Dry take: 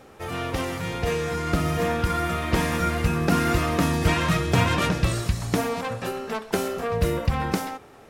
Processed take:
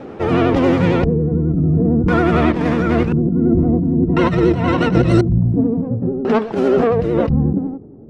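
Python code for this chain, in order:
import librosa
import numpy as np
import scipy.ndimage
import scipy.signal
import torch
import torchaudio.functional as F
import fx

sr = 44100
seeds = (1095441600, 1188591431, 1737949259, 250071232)

y = fx.filter_lfo_lowpass(x, sr, shape='square', hz=0.48, low_hz=240.0, high_hz=3800.0, q=0.7)
y = fx.peak_eq(y, sr, hz=270.0, db=13.5, octaves=2.6)
y = fx.over_compress(y, sr, threshold_db=-19.0, ratio=-1.0)
y = fx.ripple_eq(y, sr, per_octave=2.0, db=11, at=(3.16, 5.56))
y = fx.vibrato(y, sr, rate_hz=11.0, depth_cents=79.0)
y = y * 10.0 ** (4.0 / 20.0)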